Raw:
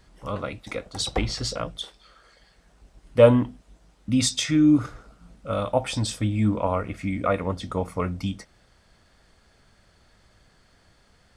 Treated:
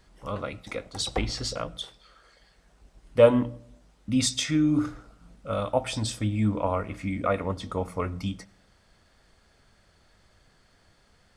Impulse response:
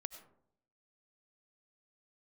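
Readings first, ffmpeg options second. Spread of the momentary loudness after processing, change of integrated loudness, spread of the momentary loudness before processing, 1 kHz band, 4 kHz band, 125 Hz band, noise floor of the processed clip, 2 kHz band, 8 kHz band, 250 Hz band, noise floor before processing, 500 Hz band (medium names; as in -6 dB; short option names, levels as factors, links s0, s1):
15 LU, -3.0 dB, 16 LU, -2.0 dB, -2.0 dB, -3.5 dB, -63 dBFS, -2.0 dB, -2.0 dB, -4.0 dB, -61 dBFS, -2.0 dB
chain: -filter_complex "[0:a]bandreject=f=60:t=h:w=6,bandreject=f=120:t=h:w=6,bandreject=f=180:t=h:w=6,bandreject=f=240:t=h:w=6,bandreject=f=300:t=h:w=6,asplit=2[s0][s1];[1:a]atrim=start_sample=2205[s2];[s1][s2]afir=irnorm=-1:irlink=0,volume=0.355[s3];[s0][s3]amix=inputs=2:normalize=0,volume=0.631"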